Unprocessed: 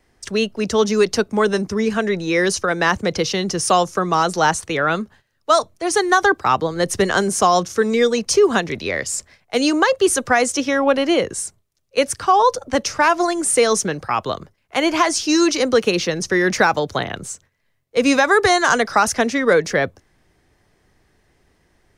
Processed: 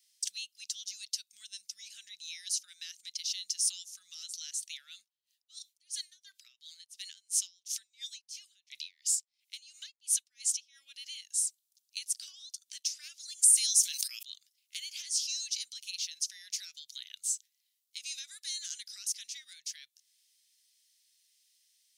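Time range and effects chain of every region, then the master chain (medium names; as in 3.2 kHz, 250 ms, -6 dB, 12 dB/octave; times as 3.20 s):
4.99–10.83 s: peaking EQ 2.5 kHz +5 dB 1.5 oct + logarithmic tremolo 2.9 Hz, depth 35 dB
13.42–14.23 s: tilt EQ +4.5 dB/octave + decay stretcher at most 49 dB/s
whole clip: compression 3:1, threshold -31 dBFS; inverse Chebyshev high-pass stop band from 1 kHz, stop band 60 dB; treble shelf 7.4 kHz +6 dB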